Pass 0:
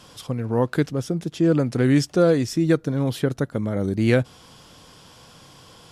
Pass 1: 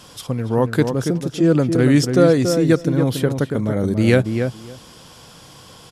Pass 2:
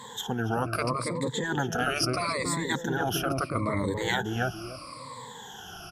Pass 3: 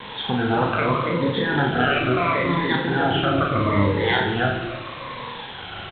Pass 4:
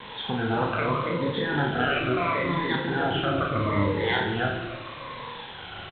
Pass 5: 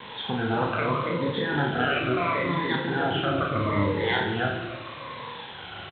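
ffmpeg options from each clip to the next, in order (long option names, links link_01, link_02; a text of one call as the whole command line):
ffmpeg -i in.wav -filter_complex "[0:a]highshelf=frequency=6900:gain=5,asplit=2[link_01][link_02];[link_02]adelay=281,lowpass=frequency=1500:poles=1,volume=-6dB,asplit=2[link_03][link_04];[link_04]adelay=281,lowpass=frequency=1500:poles=1,volume=0.15,asplit=2[link_05][link_06];[link_06]adelay=281,lowpass=frequency=1500:poles=1,volume=0.15[link_07];[link_03][link_05][link_07]amix=inputs=3:normalize=0[link_08];[link_01][link_08]amix=inputs=2:normalize=0,volume=3.5dB" out.wav
ffmpeg -i in.wav -af "afftfilt=real='re*pow(10,24/40*sin(2*PI*(1*log(max(b,1)*sr/1024/100)/log(2)-(-0.76)*(pts-256)/sr)))':imag='im*pow(10,24/40*sin(2*PI*(1*log(max(b,1)*sr/1024/100)/log(2)-(-0.76)*(pts-256)/sr)))':win_size=1024:overlap=0.75,equalizer=frequency=1100:width=0.96:gain=8.5,afftfilt=real='re*lt(hypot(re,im),1)':imag='im*lt(hypot(re,im),1)':win_size=1024:overlap=0.75,volume=-8dB" out.wav
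ffmpeg -i in.wav -filter_complex "[0:a]aresample=8000,acrusher=bits=6:mix=0:aa=0.000001,aresample=44100,asplit=2[link_01][link_02];[link_02]adelay=29,volume=-7.5dB[link_03];[link_01][link_03]amix=inputs=2:normalize=0,aecho=1:1:40|90|152.5|230.6|328.3:0.631|0.398|0.251|0.158|0.1,volume=5.5dB" out.wav
ffmpeg -i in.wav -filter_complex "[0:a]asplit=2[link_01][link_02];[link_02]adelay=27,volume=-12dB[link_03];[link_01][link_03]amix=inputs=2:normalize=0,volume=-5dB" out.wav
ffmpeg -i in.wav -af "highpass=66" out.wav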